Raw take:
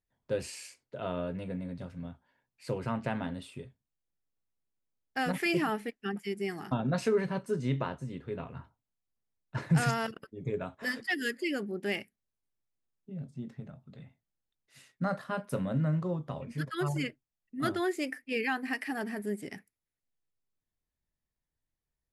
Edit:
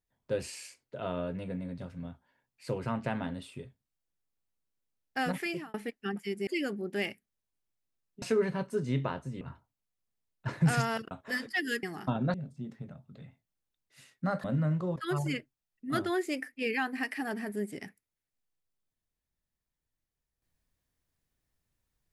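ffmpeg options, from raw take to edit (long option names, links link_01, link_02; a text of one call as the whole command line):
ffmpeg -i in.wav -filter_complex "[0:a]asplit=10[link_01][link_02][link_03][link_04][link_05][link_06][link_07][link_08][link_09][link_10];[link_01]atrim=end=5.74,asetpts=PTS-STARTPTS,afade=type=out:start_time=5.26:duration=0.48[link_11];[link_02]atrim=start=5.74:end=6.472,asetpts=PTS-STARTPTS,afade=type=in:duration=0.004:curve=hsin[link_12];[link_03]atrim=start=11.368:end=13.122[link_13];[link_04]atrim=start=6.978:end=8.172[link_14];[link_05]atrim=start=8.498:end=10.202[link_15];[link_06]atrim=start=10.648:end=11.372[link_16];[link_07]atrim=start=6.468:end=6.982[link_17];[link_08]atrim=start=13.118:end=15.222[link_18];[link_09]atrim=start=15.658:end=16.182[link_19];[link_10]atrim=start=16.658[link_20];[link_11][link_12]concat=n=2:v=0:a=1[link_21];[link_21][link_13]acrossfade=duration=0.004:curve1=hsin:curve2=hsin[link_22];[link_22][link_14]acrossfade=duration=0.004:curve1=hsin:curve2=hsin[link_23];[link_23][link_15]acrossfade=duration=0.004:curve1=hsin:curve2=hsin[link_24];[link_24][link_16]acrossfade=duration=0.004:curve1=hsin:curve2=hsin[link_25];[link_25][link_17]acrossfade=duration=0.004:curve1=hsin:curve2=hsin[link_26];[link_26][link_18]acrossfade=duration=0.004:curve1=hsin:curve2=hsin[link_27];[link_27][link_19]acrossfade=duration=0.004:curve1=hsin:curve2=hsin[link_28];[link_28][link_20]acrossfade=duration=0.004:curve1=hsin:curve2=hsin" out.wav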